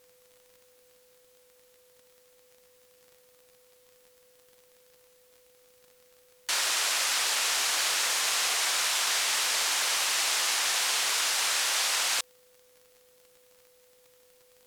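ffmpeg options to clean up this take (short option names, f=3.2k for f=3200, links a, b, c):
-af "adeclick=t=4,bandreject=f=500:w=30,agate=range=-21dB:threshold=-53dB"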